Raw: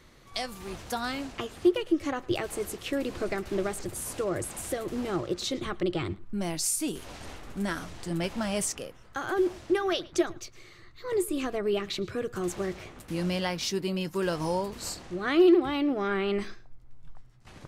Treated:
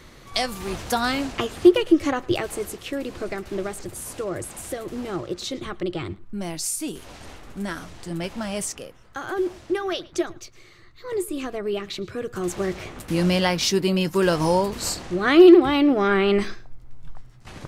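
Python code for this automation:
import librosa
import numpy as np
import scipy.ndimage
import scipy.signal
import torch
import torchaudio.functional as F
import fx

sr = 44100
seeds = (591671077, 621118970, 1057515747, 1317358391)

y = fx.gain(x, sr, db=fx.line((1.92, 9.0), (2.92, 1.0), (12.1, 1.0), (12.96, 9.0)))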